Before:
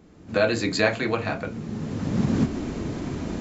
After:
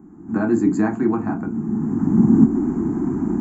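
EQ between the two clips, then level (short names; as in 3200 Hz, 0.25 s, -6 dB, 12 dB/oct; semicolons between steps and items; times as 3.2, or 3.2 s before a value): bell 5600 Hz -8 dB 0.52 oct; dynamic EQ 1700 Hz, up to -4 dB, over -39 dBFS, Q 0.92; EQ curve 110 Hz 0 dB, 220 Hz +13 dB, 360 Hz +12 dB, 530 Hz -16 dB, 810 Hz +8 dB, 1600 Hz 0 dB, 2500 Hz -17 dB, 3700 Hz -28 dB, 6700 Hz -1 dB; -1.5 dB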